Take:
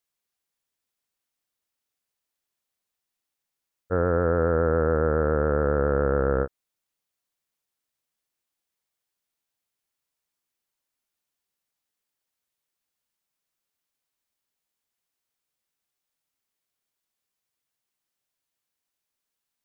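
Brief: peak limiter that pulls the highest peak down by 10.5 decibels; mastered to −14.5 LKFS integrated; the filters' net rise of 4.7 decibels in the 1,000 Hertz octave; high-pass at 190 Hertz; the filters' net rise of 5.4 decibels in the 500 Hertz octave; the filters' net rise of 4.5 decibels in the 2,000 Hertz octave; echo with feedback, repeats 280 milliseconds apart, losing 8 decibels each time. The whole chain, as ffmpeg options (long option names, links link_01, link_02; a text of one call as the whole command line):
ffmpeg -i in.wav -af "highpass=190,equalizer=frequency=500:width_type=o:gain=5,equalizer=frequency=1000:width_type=o:gain=4,equalizer=frequency=2000:width_type=o:gain=4,alimiter=limit=-18dB:level=0:latency=1,aecho=1:1:280|560|840|1120|1400:0.398|0.159|0.0637|0.0255|0.0102,volume=14dB" out.wav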